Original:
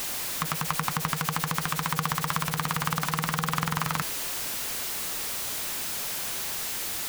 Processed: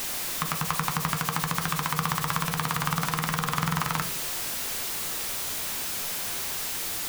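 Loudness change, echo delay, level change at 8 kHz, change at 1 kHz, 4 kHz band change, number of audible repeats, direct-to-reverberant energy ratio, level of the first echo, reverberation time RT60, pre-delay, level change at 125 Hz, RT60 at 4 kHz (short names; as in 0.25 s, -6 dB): +0.5 dB, none, +0.5 dB, +0.5 dB, +0.5 dB, none, 8.0 dB, none, 0.45 s, 12 ms, +1.0 dB, 0.30 s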